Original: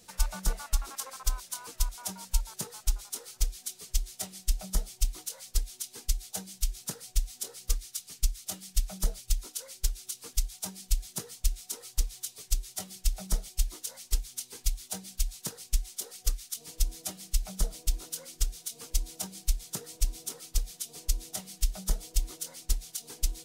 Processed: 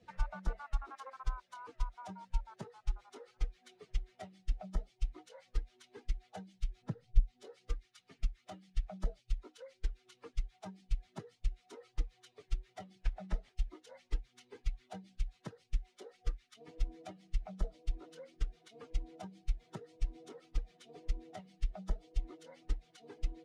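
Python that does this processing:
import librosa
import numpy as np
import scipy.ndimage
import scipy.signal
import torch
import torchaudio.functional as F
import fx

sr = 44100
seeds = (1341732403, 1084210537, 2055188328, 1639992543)

y = fx.tilt_eq(x, sr, slope=-2.5, at=(6.82, 7.43))
y = fx.cvsd(y, sr, bps=64000, at=(13.01, 13.55))
y = fx.bin_expand(y, sr, power=1.5)
y = scipy.signal.sosfilt(scipy.signal.butter(2, 1600.0, 'lowpass', fs=sr, output='sos'), y)
y = fx.band_squash(y, sr, depth_pct=70)
y = F.gain(torch.from_numpy(y), 1.0).numpy()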